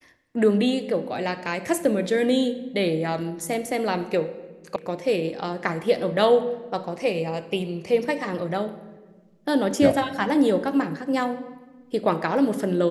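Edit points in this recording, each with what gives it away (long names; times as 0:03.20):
0:04.76: cut off before it has died away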